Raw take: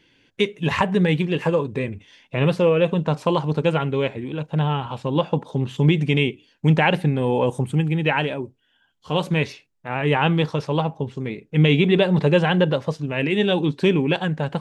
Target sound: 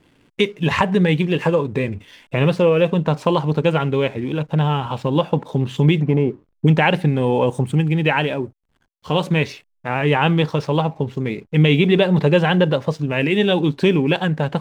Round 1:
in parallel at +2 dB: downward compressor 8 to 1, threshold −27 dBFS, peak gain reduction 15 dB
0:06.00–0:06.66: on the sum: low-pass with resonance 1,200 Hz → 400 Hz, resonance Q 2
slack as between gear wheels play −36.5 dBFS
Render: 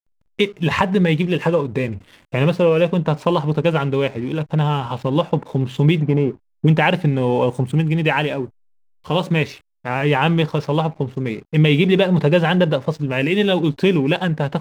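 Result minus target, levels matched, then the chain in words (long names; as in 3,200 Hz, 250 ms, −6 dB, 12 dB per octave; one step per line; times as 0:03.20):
slack as between gear wheels: distortion +8 dB
in parallel at +2 dB: downward compressor 8 to 1, threshold −27 dBFS, peak gain reduction 15 dB
0:06.00–0:06.66: on the sum: low-pass with resonance 1,200 Hz → 400 Hz, resonance Q 2
slack as between gear wheels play −45 dBFS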